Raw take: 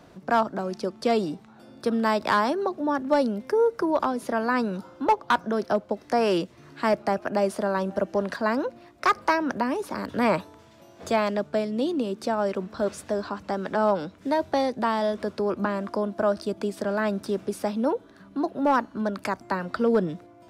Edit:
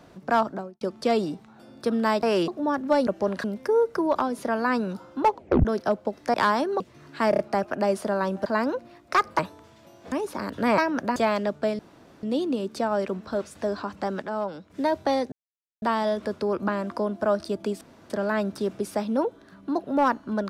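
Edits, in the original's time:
0:00.47–0:00.81: fade out and dull
0:02.23–0:02.69: swap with 0:06.18–0:06.43
0:05.17: tape stop 0.32 s
0:06.93: stutter 0.03 s, 4 plays
0:08.00–0:08.37: move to 0:03.28
0:09.30–0:09.68: swap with 0:10.34–0:11.07
0:11.70: splice in room tone 0.44 s
0:12.65–0:13.02: fade out equal-power, to −8 dB
0:13.69–0:14.17: clip gain −7 dB
0:14.79: splice in silence 0.50 s
0:16.78: splice in room tone 0.29 s

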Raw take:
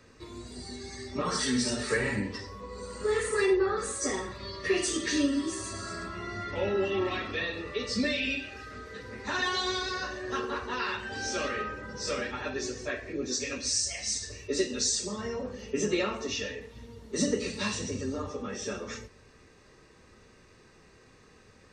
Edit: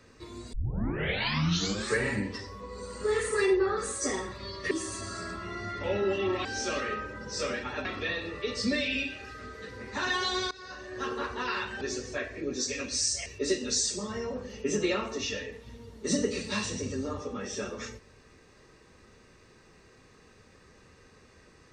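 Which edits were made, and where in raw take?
0:00.53: tape start 1.43 s
0:04.71–0:05.43: remove
0:09.83–0:10.49: fade in, from −20 dB
0:11.13–0:12.53: move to 0:07.17
0:13.98–0:14.35: remove

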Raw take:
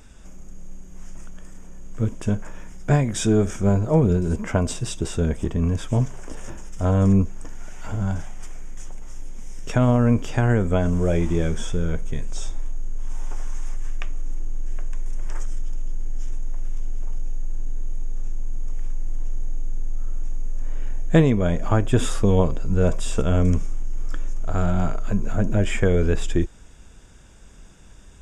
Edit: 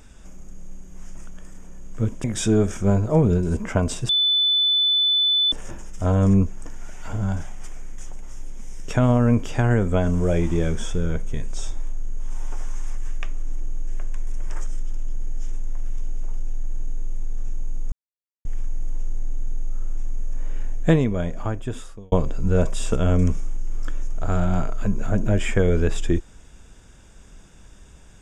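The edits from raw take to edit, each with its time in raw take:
0:02.24–0:03.03: remove
0:04.88–0:06.31: beep over 3,500 Hz −16 dBFS
0:18.71: splice in silence 0.53 s
0:20.94–0:22.38: fade out

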